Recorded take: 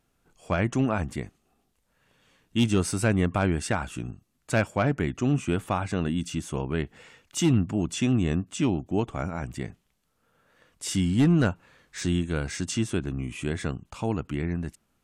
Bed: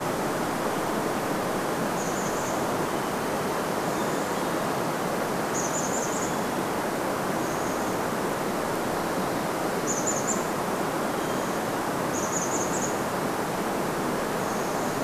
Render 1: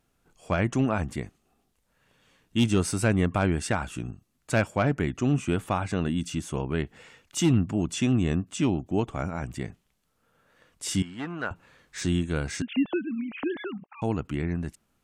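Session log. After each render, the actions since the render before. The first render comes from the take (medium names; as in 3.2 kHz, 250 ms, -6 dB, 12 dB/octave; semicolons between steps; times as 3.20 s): 11.02–11.51 s: band-pass filter 1.3 kHz, Q 1.1; 12.62–14.02 s: formants replaced by sine waves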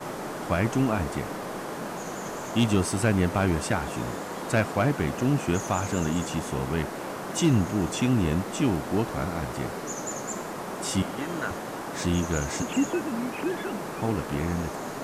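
add bed -7 dB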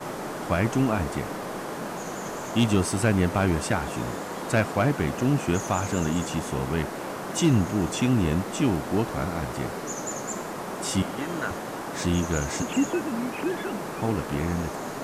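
trim +1 dB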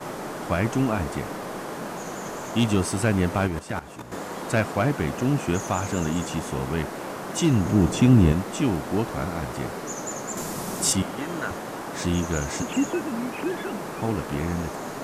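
3.47–4.12 s: level held to a coarse grid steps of 14 dB; 7.65–8.32 s: bass shelf 340 Hz +9.5 dB; 10.37–10.93 s: tone controls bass +8 dB, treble +11 dB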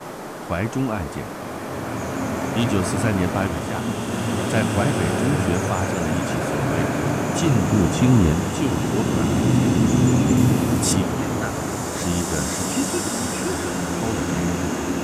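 swelling reverb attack 2260 ms, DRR -2 dB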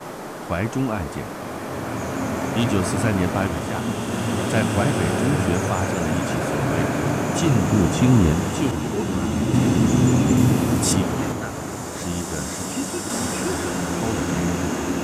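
8.71–9.54 s: three-phase chorus; 11.32–13.10 s: gain -4 dB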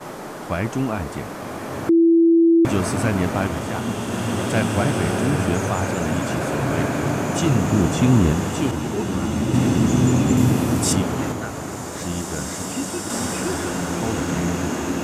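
1.89–2.65 s: bleep 333 Hz -10.5 dBFS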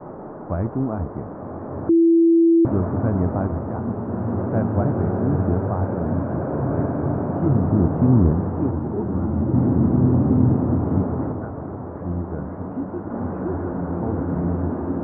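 Bessel low-pass 800 Hz, order 6; peaking EQ 87 Hz +6.5 dB 0.21 oct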